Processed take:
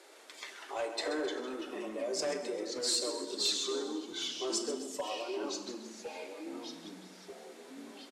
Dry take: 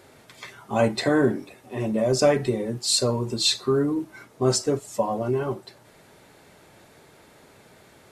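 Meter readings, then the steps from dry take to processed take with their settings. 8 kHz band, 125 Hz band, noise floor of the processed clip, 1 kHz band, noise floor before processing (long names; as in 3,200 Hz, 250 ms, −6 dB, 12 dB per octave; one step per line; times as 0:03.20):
−7.5 dB, below −30 dB, −54 dBFS, −11.5 dB, −54 dBFS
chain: downward compressor 1.5 to 1, threshold −42 dBFS, peak gain reduction 10 dB
Butterworth high-pass 300 Hz 72 dB per octave
repeating echo 131 ms, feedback 47%, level −11 dB
hard clipping −24 dBFS, distortion −20 dB
high-frequency loss of the air 52 metres
delay with pitch and tempo change per echo 115 ms, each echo −3 semitones, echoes 3, each echo −6 dB
high-shelf EQ 3,900 Hz +12 dB
four-comb reverb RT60 1.2 s, combs from 29 ms, DRR 12.5 dB
level −5.5 dB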